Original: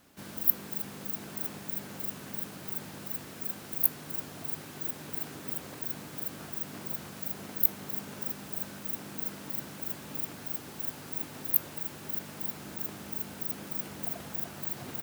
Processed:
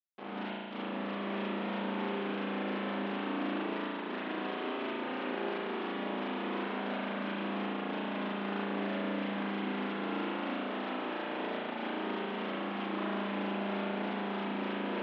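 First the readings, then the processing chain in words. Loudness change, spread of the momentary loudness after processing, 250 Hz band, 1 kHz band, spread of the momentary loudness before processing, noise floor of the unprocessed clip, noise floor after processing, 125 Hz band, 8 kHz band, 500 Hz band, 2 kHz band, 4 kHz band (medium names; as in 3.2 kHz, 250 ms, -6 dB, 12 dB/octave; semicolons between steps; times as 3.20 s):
-2.5 dB, 2 LU, +9.5 dB, +11.5 dB, 10 LU, -46 dBFS, -39 dBFS, +1.5 dB, under -35 dB, +11.5 dB, +9.0 dB, +5.0 dB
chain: compression 12:1, threshold -34 dBFS, peak gain reduction 18.5 dB; echo whose repeats swap between lows and highs 424 ms, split 1.3 kHz, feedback 71%, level -5 dB; Schmitt trigger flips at -39.5 dBFS; elliptic band-pass 260–3300 Hz, stop band 40 dB; spring tank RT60 1.9 s, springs 35 ms, chirp 40 ms, DRR -7.5 dB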